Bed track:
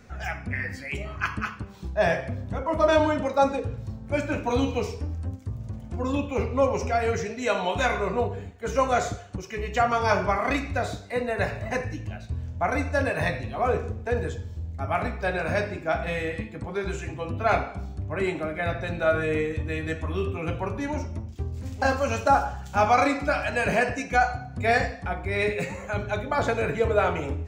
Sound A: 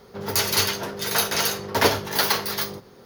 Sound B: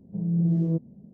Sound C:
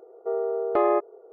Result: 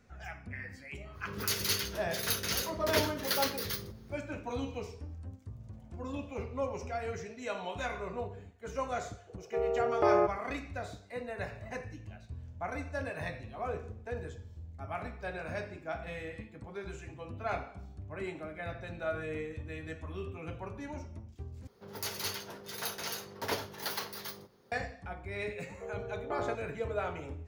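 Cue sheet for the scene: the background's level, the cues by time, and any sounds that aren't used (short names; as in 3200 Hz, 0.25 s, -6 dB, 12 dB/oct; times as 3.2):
bed track -12.5 dB
1.12 add A -9.5 dB, fades 0.05 s + bell 800 Hz -12.5 dB 0.84 oct
5.63 add B -5 dB + inverse Chebyshev high-pass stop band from 360 Hz
9.27 add C -4.5 dB
21.67 replace with A -15.5 dB
25.55 add C -15.5 dB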